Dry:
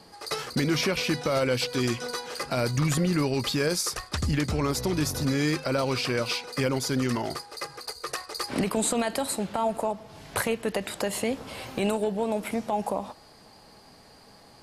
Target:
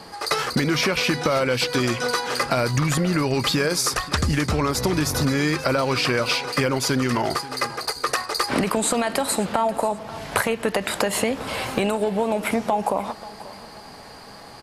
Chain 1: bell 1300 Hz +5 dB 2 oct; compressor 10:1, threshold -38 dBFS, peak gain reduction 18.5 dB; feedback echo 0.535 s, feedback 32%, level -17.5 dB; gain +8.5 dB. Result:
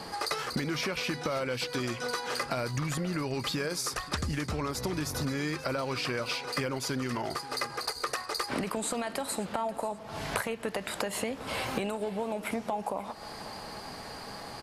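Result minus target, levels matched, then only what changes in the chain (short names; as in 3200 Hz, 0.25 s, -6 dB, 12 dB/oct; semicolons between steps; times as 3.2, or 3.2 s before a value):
compressor: peak gain reduction +11 dB
change: compressor 10:1, threshold -26 dBFS, peak gain reduction 8 dB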